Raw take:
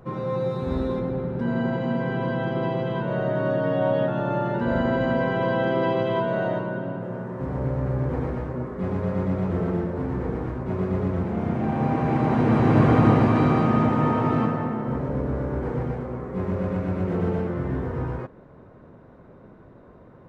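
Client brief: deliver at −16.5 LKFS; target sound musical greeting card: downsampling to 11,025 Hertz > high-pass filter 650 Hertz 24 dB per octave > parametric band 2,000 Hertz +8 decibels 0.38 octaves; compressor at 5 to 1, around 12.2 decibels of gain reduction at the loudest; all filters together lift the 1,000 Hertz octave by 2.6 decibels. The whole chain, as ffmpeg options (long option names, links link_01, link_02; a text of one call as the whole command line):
ffmpeg -i in.wav -af "equalizer=frequency=1000:width_type=o:gain=3.5,acompressor=threshold=-26dB:ratio=5,aresample=11025,aresample=44100,highpass=frequency=650:width=0.5412,highpass=frequency=650:width=1.3066,equalizer=frequency=2000:width_type=o:width=0.38:gain=8,volume=19.5dB" out.wav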